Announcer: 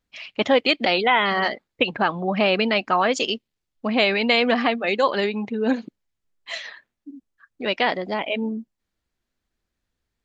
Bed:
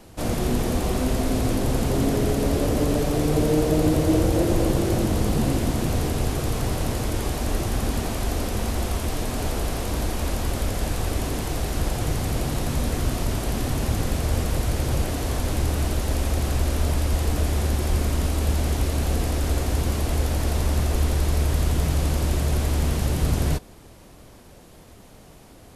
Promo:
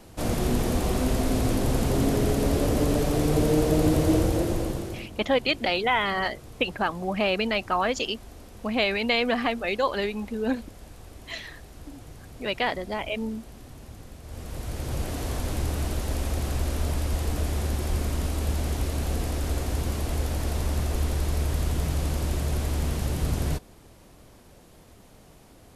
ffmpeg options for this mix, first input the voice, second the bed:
ffmpeg -i stem1.wav -i stem2.wav -filter_complex "[0:a]adelay=4800,volume=-5dB[link_01];[1:a]volume=14dB,afade=type=out:start_time=4.1:duration=0.99:silence=0.11885,afade=type=in:start_time=14.23:duration=0.97:silence=0.16788[link_02];[link_01][link_02]amix=inputs=2:normalize=0" out.wav

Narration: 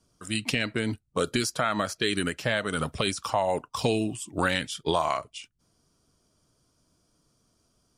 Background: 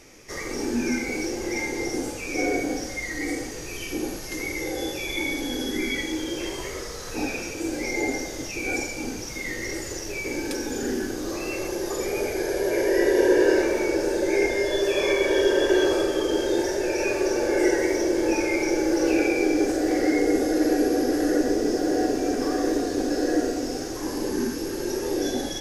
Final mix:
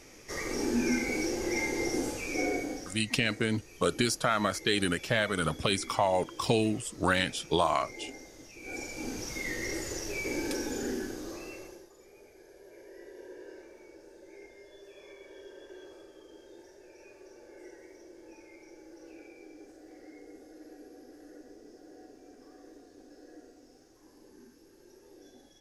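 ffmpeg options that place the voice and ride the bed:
ffmpeg -i stem1.wav -i stem2.wav -filter_complex "[0:a]adelay=2650,volume=-1dB[link_01];[1:a]volume=11dB,afade=type=out:start_time=2.14:duration=0.91:silence=0.177828,afade=type=in:start_time=8.6:duration=0.64:silence=0.199526,afade=type=out:start_time=10.51:duration=1.38:silence=0.0562341[link_02];[link_01][link_02]amix=inputs=2:normalize=0" out.wav

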